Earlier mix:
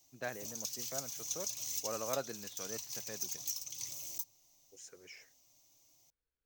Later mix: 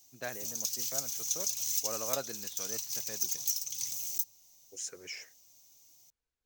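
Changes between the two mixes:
second voice +7.0 dB
master: add high-shelf EQ 3,800 Hz +8.5 dB

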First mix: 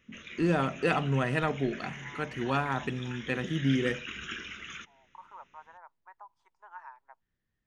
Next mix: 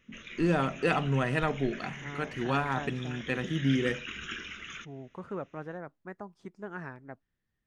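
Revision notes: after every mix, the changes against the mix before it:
second voice: remove four-pole ladder high-pass 880 Hz, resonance 80%
background: remove high-pass filter 43 Hz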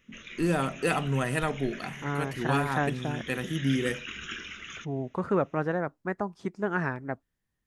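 first voice: remove low-pass filter 4,500 Hz 12 dB per octave
second voice +11.5 dB
background: add high-shelf EQ 4,600 Hz +4.5 dB

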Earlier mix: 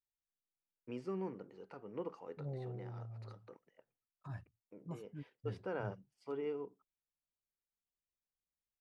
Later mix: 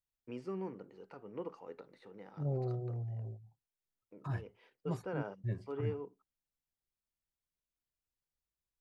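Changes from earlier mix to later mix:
first voice: entry −0.60 s
second voice +8.0 dB

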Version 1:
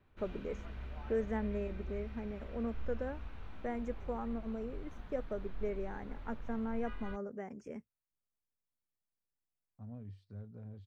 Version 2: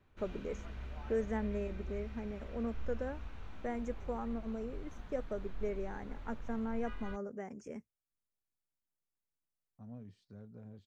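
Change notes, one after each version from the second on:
second voice: add parametric band 97 Hz −12 dB 0.26 octaves
master: add parametric band 6,800 Hz +7.5 dB 0.83 octaves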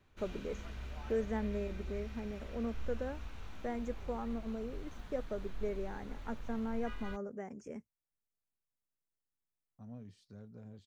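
first voice: add high-shelf EQ 2,900 Hz −11 dB
master: add high-shelf EQ 4,100 Hz +11.5 dB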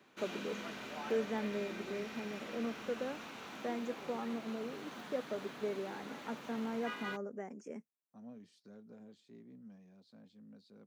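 second voice: entry −1.65 s
background +8.0 dB
master: add high-pass filter 190 Hz 24 dB per octave

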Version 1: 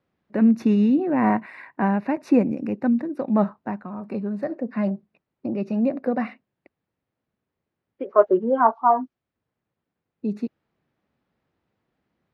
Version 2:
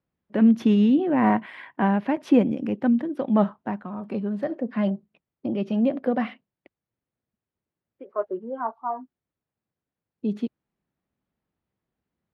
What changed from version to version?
first voice: remove Butterworth band-reject 3,200 Hz, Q 3.3
second voice −11.5 dB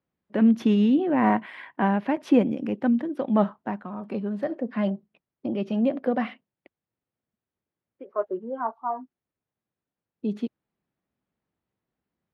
first voice: add low-shelf EQ 140 Hz −6 dB

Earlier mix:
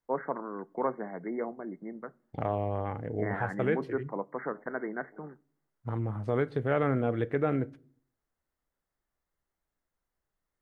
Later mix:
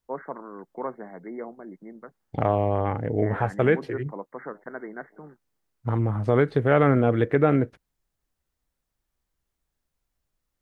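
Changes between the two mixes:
second voice +11.0 dB
reverb: off

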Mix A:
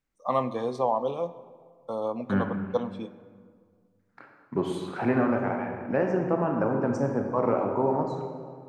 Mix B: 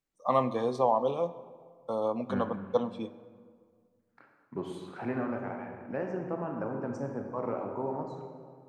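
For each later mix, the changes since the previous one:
second voice −9.0 dB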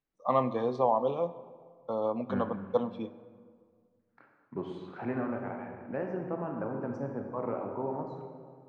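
master: add high-frequency loss of the air 170 metres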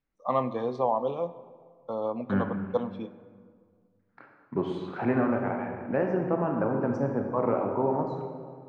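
second voice +8.0 dB

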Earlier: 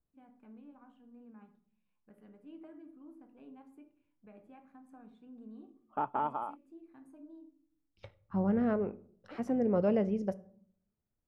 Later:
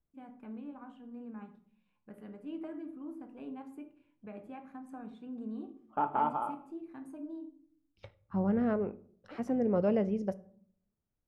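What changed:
first voice +9.5 dB
background: send on

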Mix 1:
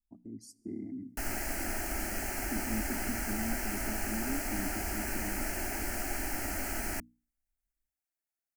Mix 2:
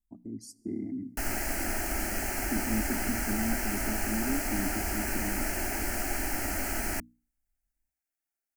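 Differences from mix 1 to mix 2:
speech +5.0 dB
background +3.5 dB

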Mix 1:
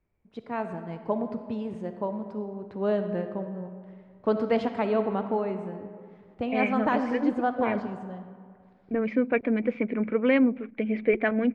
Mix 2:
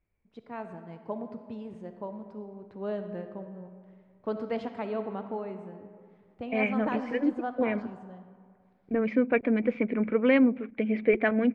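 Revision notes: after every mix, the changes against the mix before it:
first voice −7.5 dB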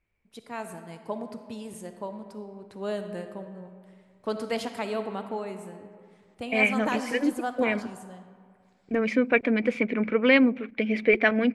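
master: remove head-to-tape spacing loss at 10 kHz 37 dB

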